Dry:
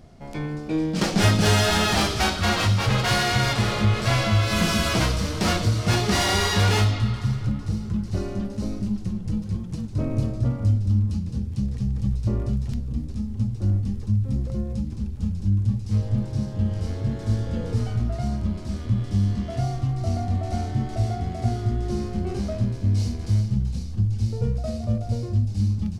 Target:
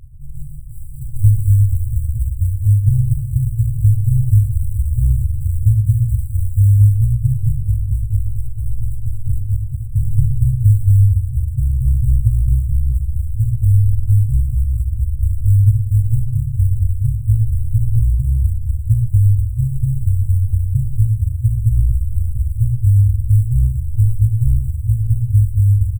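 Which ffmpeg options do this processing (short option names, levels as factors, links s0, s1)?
-filter_complex "[0:a]aemphasis=mode=reproduction:type=riaa,acrusher=bits=6:mode=log:mix=0:aa=0.000001,afftfilt=real='re*(1-between(b*sr/4096,150,7600))':imag='im*(1-between(b*sr/4096,150,7600))':win_size=4096:overlap=0.75,asplit=2[s0][s1];[s1]adelay=119,lowpass=f=1900:p=1,volume=0.355,asplit=2[s2][s3];[s3]adelay=119,lowpass=f=1900:p=1,volume=0.23,asplit=2[s4][s5];[s5]adelay=119,lowpass=f=1900:p=1,volume=0.23[s6];[s2][s4][s6]amix=inputs=3:normalize=0[s7];[s0][s7]amix=inputs=2:normalize=0,volume=0.631"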